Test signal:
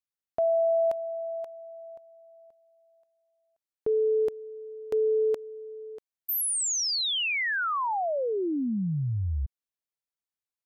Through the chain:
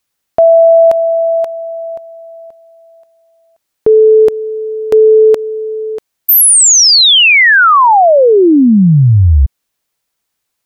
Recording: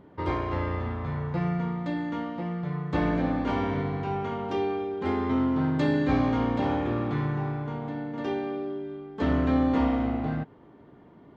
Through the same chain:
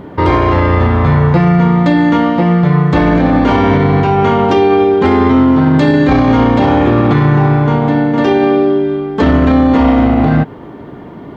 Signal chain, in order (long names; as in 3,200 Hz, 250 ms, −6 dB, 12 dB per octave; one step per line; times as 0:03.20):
boost into a limiter +23 dB
level −1 dB